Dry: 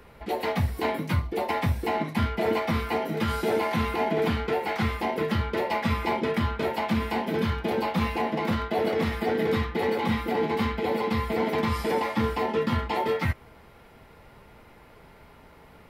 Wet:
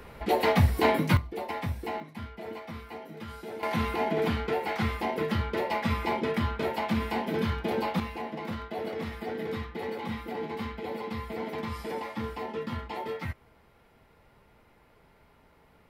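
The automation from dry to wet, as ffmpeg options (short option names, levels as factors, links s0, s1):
-af "asetnsamples=n=441:p=0,asendcmd='1.17 volume volume -7dB;2 volume volume -14.5dB;3.63 volume volume -2.5dB;8 volume volume -9dB',volume=1.58"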